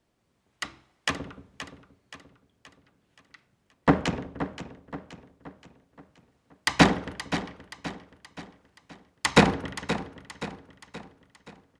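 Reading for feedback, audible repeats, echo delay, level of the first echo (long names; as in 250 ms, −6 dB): 47%, 4, 525 ms, −11.5 dB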